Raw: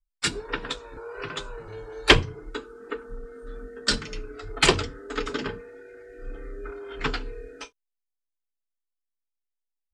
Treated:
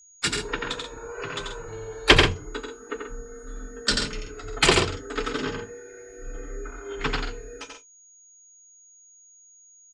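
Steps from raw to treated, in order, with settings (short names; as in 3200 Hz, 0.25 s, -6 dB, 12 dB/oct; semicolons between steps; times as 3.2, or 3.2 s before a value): loudspeakers at several distances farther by 30 m -4 dB, 46 m -9 dB; whine 6700 Hz -51 dBFS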